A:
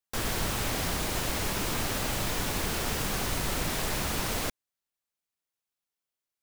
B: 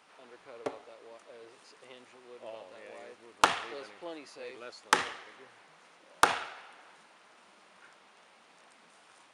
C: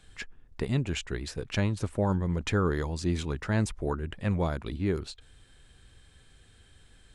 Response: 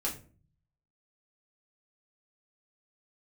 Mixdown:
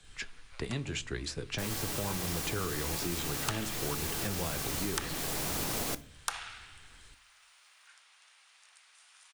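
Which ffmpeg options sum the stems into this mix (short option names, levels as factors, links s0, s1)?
-filter_complex "[0:a]adelay=1450,volume=1,asplit=2[s0][s1];[s1]volume=0.158[s2];[1:a]highpass=1500,adelay=50,volume=0.75,asplit=2[s3][s4];[s4]volume=0.15[s5];[2:a]lowpass=8600,flanger=delay=1.6:depth=8:regen=-61:speed=1.7:shape=triangular,volume=1.19,asplit=3[s6][s7][s8];[s7]volume=0.119[s9];[s8]apad=whole_len=347312[s10];[s0][s10]sidechaincompress=threshold=0.00891:ratio=3:attack=16:release=805[s11];[s11][s6]amix=inputs=2:normalize=0,alimiter=limit=0.0794:level=0:latency=1:release=391,volume=1[s12];[3:a]atrim=start_sample=2205[s13];[s2][s5][s9]amix=inputs=3:normalize=0[s14];[s14][s13]afir=irnorm=-1:irlink=0[s15];[s3][s12][s15]amix=inputs=3:normalize=0,highshelf=f=3700:g=8.5,acrossover=split=100|260|950[s16][s17][s18][s19];[s16]acompressor=threshold=0.00708:ratio=4[s20];[s17]acompressor=threshold=0.01:ratio=4[s21];[s18]acompressor=threshold=0.0126:ratio=4[s22];[s19]acompressor=threshold=0.02:ratio=4[s23];[s20][s21][s22][s23]amix=inputs=4:normalize=0"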